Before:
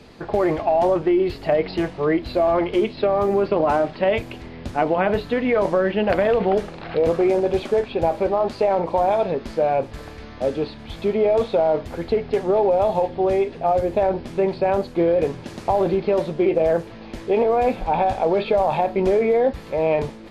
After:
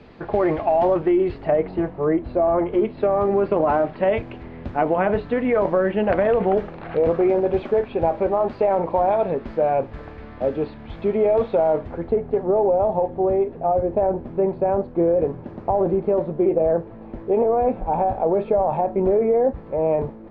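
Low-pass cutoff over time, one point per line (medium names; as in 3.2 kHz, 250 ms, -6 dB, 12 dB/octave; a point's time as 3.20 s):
0.95 s 2.7 kHz
1.40 s 1.9 kHz
1.73 s 1.2 kHz
2.57 s 1.2 kHz
3.29 s 2 kHz
11.72 s 2 kHz
12.19 s 1 kHz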